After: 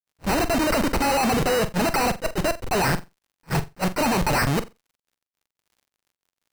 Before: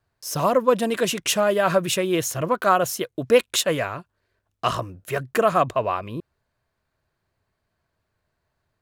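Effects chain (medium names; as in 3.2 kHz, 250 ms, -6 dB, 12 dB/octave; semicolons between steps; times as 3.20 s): reverb removal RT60 0.99 s; low-pass that closes with the level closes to 380 Hz, closed at -16.5 dBFS; speed mistake 33 rpm record played at 45 rpm; level rider gain up to 15 dB; Schmitt trigger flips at -27 dBFS; sample-and-hold 13×; crackle 52 per s -49 dBFS; on a send: flutter echo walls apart 7.6 m, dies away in 0.22 s; on the sum: attacks held to a fixed rise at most 510 dB/s; trim -1 dB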